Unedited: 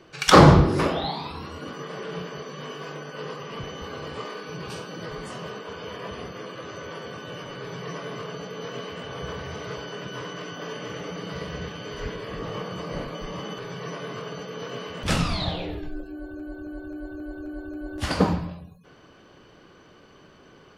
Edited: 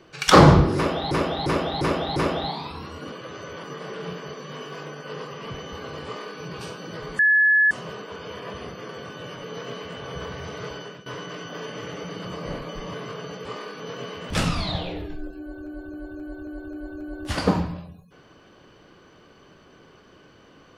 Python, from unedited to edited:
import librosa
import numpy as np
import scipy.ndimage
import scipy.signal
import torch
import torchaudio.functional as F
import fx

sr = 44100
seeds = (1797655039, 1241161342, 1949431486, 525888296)

y = fx.edit(x, sr, fx.repeat(start_s=0.76, length_s=0.35, count=5),
    fx.duplicate(start_s=4.14, length_s=0.35, to_s=14.53),
    fx.insert_tone(at_s=5.28, length_s=0.52, hz=1710.0, db=-14.0),
    fx.move(start_s=6.46, length_s=0.51, to_s=1.72),
    fx.cut(start_s=7.52, length_s=0.99),
    fx.fade_out_to(start_s=9.86, length_s=0.27, floor_db=-15.5),
    fx.cut(start_s=11.32, length_s=1.39),
    fx.cut(start_s=13.4, length_s=0.62), tone=tone)